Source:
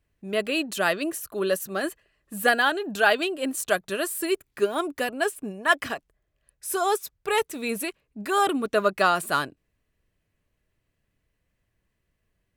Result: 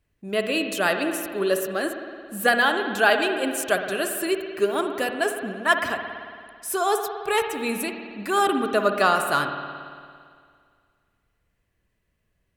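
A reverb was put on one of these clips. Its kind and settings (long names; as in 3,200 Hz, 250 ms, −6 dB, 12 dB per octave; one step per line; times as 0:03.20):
spring reverb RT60 2.1 s, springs 55 ms, chirp 35 ms, DRR 5.5 dB
level +1 dB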